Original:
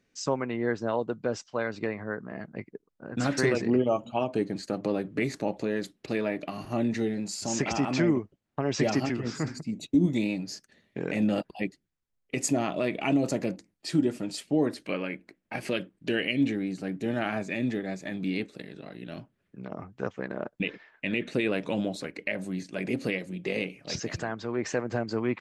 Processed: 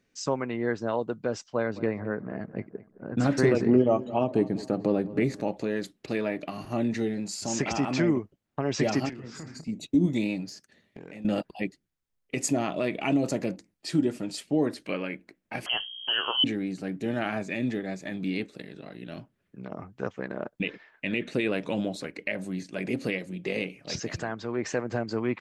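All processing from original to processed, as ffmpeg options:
ffmpeg -i in.wav -filter_complex "[0:a]asettb=1/sr,asplit=3[link_01][link_02][link_03];[link_01]atrim=end=1.524[link_04];[link_02]atrim=start=1.52:end=5.41,asetpts=PTS-STARTPTS,afade=type=in:duration=0.004:curve=qsin,afade=type=out:start_time=3.886:duration=0.004:curve=qsin,tiltshelf=frequency=1100:gain=4.5,asplit=2[link_05][link_06];[link_06]adelay=214,lowpass=frequency=2400:poles=1,volume=-17dB,asplit=2[link_07][link_08];[link_08]adelay=214,lowpass=frequency=2400:poles=1,volume=0.44,asplit=2[link_09][link_10];[link_10]adelay=214,lowpass=frequency=2400:poles=1,volume=0.44,asplit=2[link_11][link_12];[link_12]adelay=214,lowpass=frequency=2400:poles=1,volume=0.44[link_13];[link_05][link_07][link_09][link_11][link_13]amix=inputs=5:normalize=0,atrim=end_sample=171549[link_14];[link_03]atrim=start=5.406[link_15];[link_04][link_14]acrossfade=duration=0.004:curve1=hsin:curve2=qsin[link_16];[link_16][link_15]acrossfade=duration=0.004:curve1=qsin:curve2=hsin,asettb=1/sr,asplit=3[link_17][link_18][link_19];[link_17]atrim=end=9.094[link_20];[link_18]atrim=start=9.09:end=9.68,asetpts=PTS-STARTPTS,afade=type=in:duration=0.004:curve=qsin,afade=type=out:start_time=0.586:duration=0.004:curve=qsin,acompressor=threshold=-38dB:ratio=6:attack=3.2:release=140:knee=1:detection=peak,asplit=2[link_21][link_22];[link_22]adelay=31,volume=-9.5dB[link_23];[link_21][link_23]amix=inputs=2:normalize=0,atrim=end_sample=26019[link_24];[link_19]atrim=start=9.676[link_25];[link_20][link_24]acrossfade=duration=0.004:curve1=hsin:curve2=qsin[link_26];[link_26][link_25]acrossfade=duration=0.004:curve1=qsin:curve2=hsin,asettb=1/sr,asplit=3[link_27][link_28][link_29];[link_27]atrim=end=10.494[link_30];[link_28]atrim=start=10.49:end=11.25,asetpts=PTS-STARTPTS,afade=type=in:duration=0.004:curve=qsin,afade=type=out:start_time=0.756:duration=0.004:curve=qsin,highpass=frequency=58:width=0.5412,highpass=frequency=58:width=1.3066,acompressor=threshold=-39dB:ratio=8:attack=3.2:release=140:knee=1:detection=peak,volume=33.5dB,asoftclip=hard,volume=-33.5dB[link_31];[link_29]atrim=start=11.246[link_32];[link_30][link_31]acrossfade=duration=0.004:curve1=hsin:curve2=qsin[link_33];[link_33][link_32]acrossfade=duration=0.004:curve1=qsin:curve2=hsin,asettb=1/sr,asplit=3[link_34][link_35][link_36];[link_34]atrim=end=15.664[link_37];[link_35]atrim=start=15.66:end=16.44,asetpts=PTS-STARTPTS,afade=type=in:duration=0.004:curve=qsin,afade=type=out:start_time=0.776:duration=0.004:curve=qsin,agate=range=-33dB:threshold=-55dB:ratio=3:release=100:detection=peak,aeval=exprs='val(0)+0.01*(sin(2*PI*60*n/s)+sin(2*PI*2*60*n/s)/2+sin(2*PI*3*60*n/s)/3+sin(2*PI*4*60*n/s)/4+sin(2*PI*5*60*n/s)/5)':channel_layout=same,lowpass=frequency=2800:width_type=q:width=0.5098,lowpass=frequency=2800:width_type=q:width=0.6013,lowpass=frequency=2800:width_type=q:width=0.9,lowpass=frequency=2800:width_type=q:width=2.563,afreqshift=-3300[link_38];[link_36]atrim=start=16.436[link_39];[link_37][link_38]acrossfade=duration=0.004:curve1=hsin:curve2=qsin[link_40];[link_40][link_39]acrossfade=duration=0.004:curve1=qsin:curve2=hsin" out.wav

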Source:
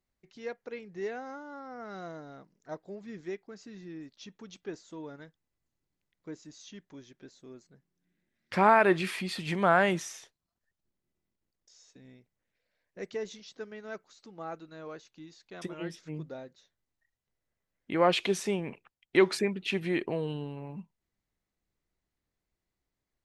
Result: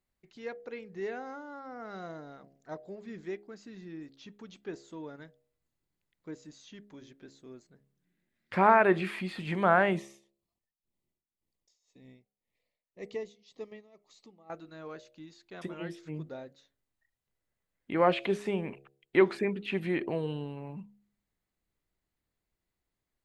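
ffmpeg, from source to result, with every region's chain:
ffmpeg -i in.wav -filter_complex "[0:a]asettb=1/sr,asplit=3[link_01][link_02][link_03];[link_01]atrim=end=9.964[link_04];[link_02]atrim=start=9.96:end=14.5,asetpts=PTS-STARTPTS,afade=type=in:duration=0.004:curve=qsin,afade=type=out:start_time=4.536:duration=0.004:curve=qsin,tremolo=f=1.9:d=0.9,asuperstop=centerf=1500:order=4:qfactor=2.5[link_05];[link_03]atrim=start=14.496[link_06];[link_04][link_05]acrossfade=duration=0.004:curve1=hsin:curve2=qsin[link_07];[link_07][link_06]acrossfade=duration=0.004:curve1=qsin:curve2=hsin,bandreject=frequency=68.47:width_type=h:width=4,bandreject=frequency=136.94:width_type=h:width=4,bandreject=frequency=205.41:width_type=h:width=4,bandreject=frequency=273.88:width_type=h:width=4,bandreject=frequency=342.35:width_type=h:width=4,bandreject=frequency=410.82:width_type=h:width=4,bandreject=frequency=479.29:width_type=h:width=4,bandreject=frequency=547.76:width_type=h:width=4,bandreject=frequency=616.23:width_type=h:width=4,bandreject=frequency=684.7:width_type=h:width=4,bandreject=frequency=753.17:width_type=h:width=4,acrossover=split=2800[link_08][link_09];[link_09]acompressor=threshold=-51dB:ratio=4:attack=1:release=60[link_10];[link_08][link_10]amix=inputs=2:normalize=0,equalizer=frequency=5700:width_type=o:width=0.28:gain=-5.5" out.wav

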